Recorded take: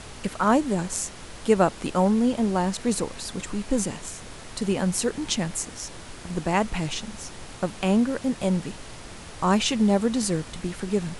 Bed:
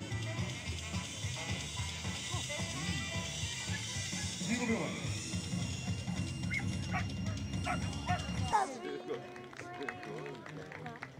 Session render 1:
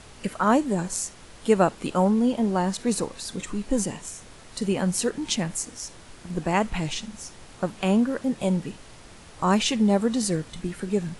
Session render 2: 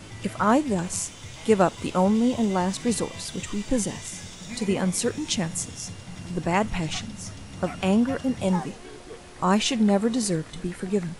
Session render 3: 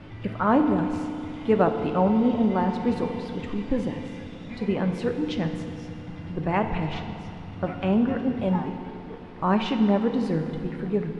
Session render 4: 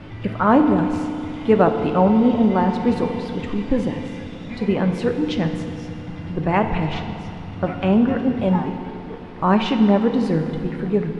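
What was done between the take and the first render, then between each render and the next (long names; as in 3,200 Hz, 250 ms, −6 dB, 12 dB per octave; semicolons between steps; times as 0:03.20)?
noise reduction from a noise print 6 dB
mix in bed −2.5 dB
high-frequency loss of the air 370 metres; feedback delay network reverb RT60 2.6 s, low-frequency decay 1.25×, high-frequency decay 0.8×, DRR 6 dB
level +5.5 dB; brickwall limiter −1 dBFS, peak gain reduction 0.5 dB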